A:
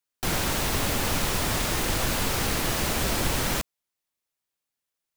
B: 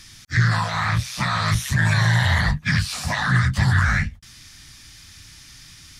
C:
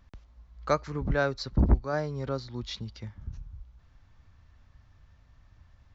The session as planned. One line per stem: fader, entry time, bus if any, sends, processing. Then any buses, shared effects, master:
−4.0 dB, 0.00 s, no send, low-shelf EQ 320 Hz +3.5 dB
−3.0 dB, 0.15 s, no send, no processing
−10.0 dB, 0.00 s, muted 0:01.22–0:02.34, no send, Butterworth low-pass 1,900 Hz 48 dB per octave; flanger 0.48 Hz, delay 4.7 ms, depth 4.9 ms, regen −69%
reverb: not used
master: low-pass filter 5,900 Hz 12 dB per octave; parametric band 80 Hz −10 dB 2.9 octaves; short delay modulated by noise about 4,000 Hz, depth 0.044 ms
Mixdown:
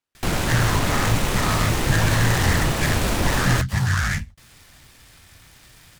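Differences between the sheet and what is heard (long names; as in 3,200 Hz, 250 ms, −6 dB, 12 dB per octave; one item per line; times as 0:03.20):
stem A −4.0 dB → +3.0 dB
stem C: muted
master: missing parametric band 80 Hz −10 dB 2.9 octaves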